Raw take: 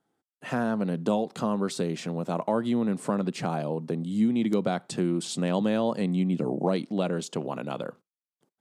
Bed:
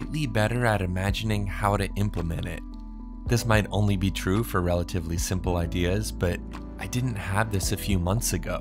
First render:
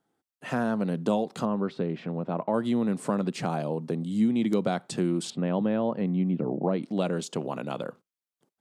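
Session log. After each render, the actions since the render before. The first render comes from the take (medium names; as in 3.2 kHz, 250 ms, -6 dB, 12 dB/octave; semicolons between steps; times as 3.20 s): 1.45–2.54 s: distance through air 380 m; 5.30–6.83 s: distance through air 460 m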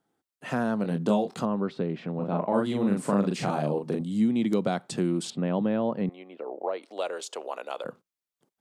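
0.82–1.39 s: doubling 24 ms -6.5 dB; 2.15–4.01 s: doubling 40 ms -2.5 dB; 6.09–7.85 s: high-pass 460 Hz 24 dB/octave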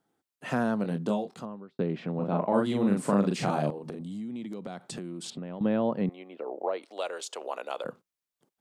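0.64–1.79 s: fade out; 3.70–5.61 s: compression 8:1, threshold -34 dBFS; 6.84–7.41 s: bass shelf 490 Hz -6.5 dB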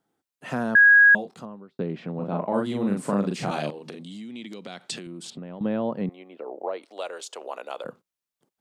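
0.75–1.15 s: bleep 1.65 kHz -10.5 dBFS; 3.51–5.07 s: frequency weighting D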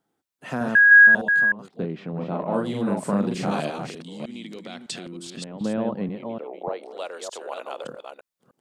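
chunks repeated in reverse 304 ms, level -5 dB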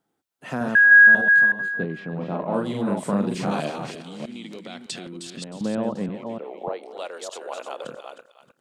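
thinning echo 311 ms, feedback 23%, high-pass 1.1 kHz, level -10 dB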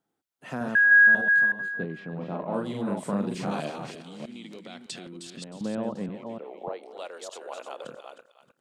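trim -5 dB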